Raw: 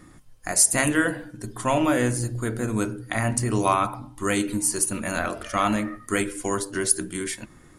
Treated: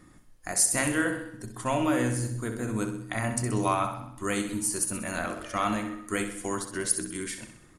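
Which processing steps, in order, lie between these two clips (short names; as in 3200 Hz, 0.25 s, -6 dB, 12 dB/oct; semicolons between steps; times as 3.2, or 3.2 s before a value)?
feedback echo 64 ms, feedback 54%, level -9 dB; gain -5.5 dB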